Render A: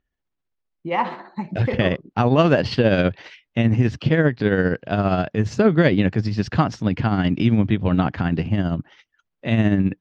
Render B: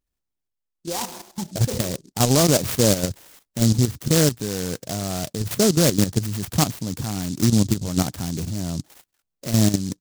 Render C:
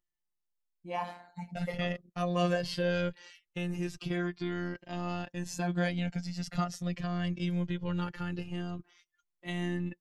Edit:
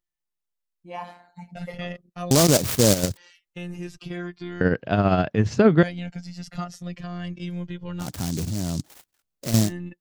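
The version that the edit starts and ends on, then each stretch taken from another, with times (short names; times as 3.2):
C
2.31–3.17 from B
4.61–5.83 from A
8.07–9.65 from B, crossfade 0.16 s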